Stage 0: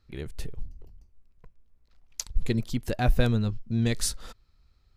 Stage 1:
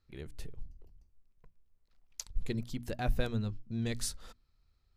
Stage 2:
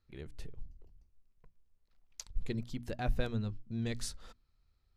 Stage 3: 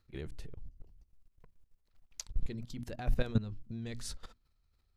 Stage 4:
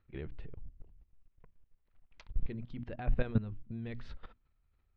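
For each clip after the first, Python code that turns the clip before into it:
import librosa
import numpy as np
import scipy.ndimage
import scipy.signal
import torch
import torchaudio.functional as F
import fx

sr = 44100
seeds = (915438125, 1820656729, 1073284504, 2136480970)

y1 = fx.hum_notches(x, sr, base_hz=60, count=5)
y1 = y1 * librosa.db_to_amplitude(-8.0)
y2 = fx.high_shelf(y1, sr, hz=10000.0, db=-11.0)
y2 = y2 * librosa.db_to_amplitude(-1.5)
y3 = fx.level_steps(y2, sr, step_db=16)
y3 = y3 * librosa.db_to_amplitude(8.0)
y4 = scipy.signal.sosfilt(scipy.signal.butter(4, 2900.0, 'lowpass', fs=sr, output='sos'), y3)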